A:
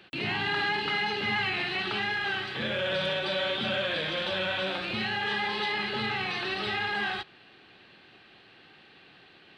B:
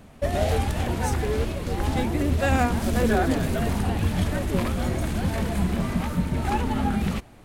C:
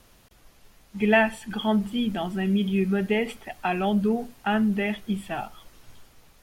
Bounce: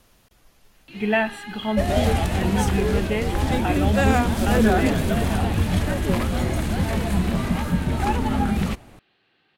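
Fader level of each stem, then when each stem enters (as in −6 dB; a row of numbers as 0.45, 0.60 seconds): −11.0, +2.5, −1.5 decibels; 0.75, 1.55, 0.00 seconds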